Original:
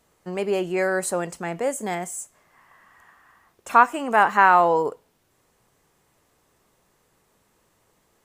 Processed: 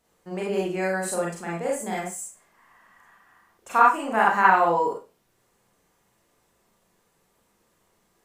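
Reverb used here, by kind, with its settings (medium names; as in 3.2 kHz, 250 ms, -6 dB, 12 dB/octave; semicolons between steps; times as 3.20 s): Schroeder reverb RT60 0.3 s, combs from 32 ms, DRR -3.5 dB; trim -7 dB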